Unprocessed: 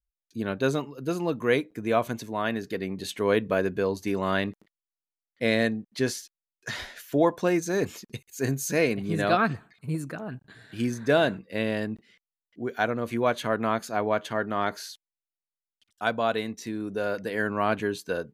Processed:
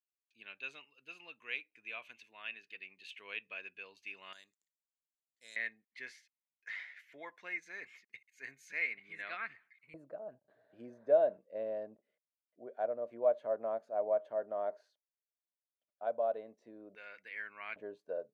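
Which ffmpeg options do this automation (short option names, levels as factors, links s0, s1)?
-af "asetnsamples=n=441:p=0,asendcmd='4.33 bandpass f 7200;5.56 bandpass f 2100;9.94 bandpass f 600;16.95 bandpass f 2200;17.76 bandpass f 600',bandpass=f=2600:t=q:w=8:csg=0"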